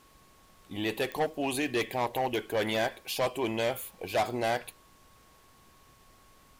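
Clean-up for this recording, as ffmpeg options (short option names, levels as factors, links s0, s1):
-af "adeclick=t=4,bandreject=f=1100:w=30,agate=range=0.0891:threshold=0.00251"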